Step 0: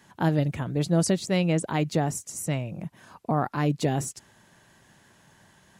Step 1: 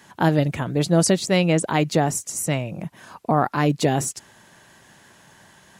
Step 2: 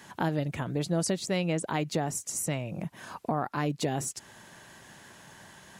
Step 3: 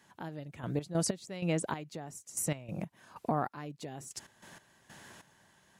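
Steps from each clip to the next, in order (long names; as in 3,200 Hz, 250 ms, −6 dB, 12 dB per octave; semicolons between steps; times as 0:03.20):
low-shelf EQ 230 Hz −6 dB; level +7.5 dB
downward compressor 2 to 1, threshold −34 dBFS, peak gain reduction 11.5 dB
gate pattern "....x.x..xx" 95 BPM −12 dB; level −1.5 dB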